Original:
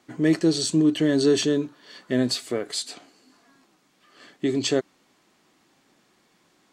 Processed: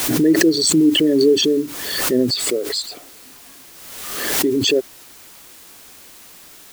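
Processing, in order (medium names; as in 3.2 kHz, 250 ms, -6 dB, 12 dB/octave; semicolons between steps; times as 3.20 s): resonances exaggerated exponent 2; word length cut 8-bit, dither triangular; swell ahead of each attack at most 38 dB/s; trim +5 dB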